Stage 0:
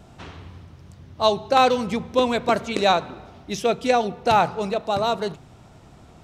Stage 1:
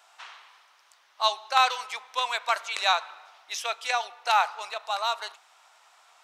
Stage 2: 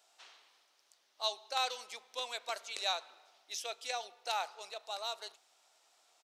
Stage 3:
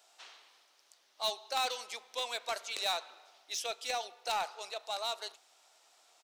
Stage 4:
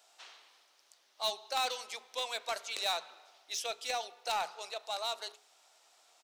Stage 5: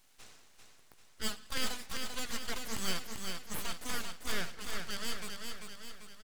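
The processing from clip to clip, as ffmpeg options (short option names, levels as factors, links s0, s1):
-af "highpass=f=910:w=0.5412,highpass=f=910:w=1.3066"
-af "firequalizer=gain_entry='entry(320,0);entry(1000,-18);entry(4400,-6)':delay=0.05:min_phase=1"
-filter_complex "[0:a]highpass=180,asplit=2[s0][s1];[s1]aeval=exprs='0.02*(abs(mod(val(0)/0.02+3,4)-2)-1)':c=same,volume=0.596[s2];[s0][s2]amix=inputs=2:normalize=0"
-af "bandreject=f=60:t=h:w=6,bandreject=f=120:t=h:w=6,bandreject=f=180:t=h:w=6,bandreject=f=240:t=h:w=6,bandreject=f=300:t=h:w=6,bandreject=f=360:t=h:w=6,bandreject=f=420:t=h:w=6"
-filter_complex "[0:a]aeval=exprs='abs(val(0))':c=same,asplit=2[s0][s1];[s1]aecho=0:1:393|786|1179|1572|1965|2358|2751:0.562|0.298|0.158|0.0837|0.0444|0.0235|0.0125[s2];[s0][s2]amix=inputs=2:normalize=0,volume=1.12"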